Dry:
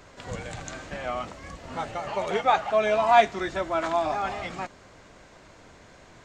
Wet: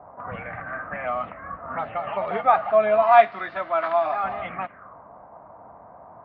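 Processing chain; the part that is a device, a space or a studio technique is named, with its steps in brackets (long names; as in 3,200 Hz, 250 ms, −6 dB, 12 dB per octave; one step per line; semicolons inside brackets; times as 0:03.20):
0:03.02–0:04.24: spectral tilt +3 dB per octave
envelope filter bass rig (envelope-controlled low-pass 750–4,600 Hz up, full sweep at −27 dBFS; loudspeaker in its box 69–2,200 Hz, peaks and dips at 200 Hz +3 dB, 370 Hz −6 dB, 680 Hz +8 dB, 1,200 Hz +8 dB)
level −2 dB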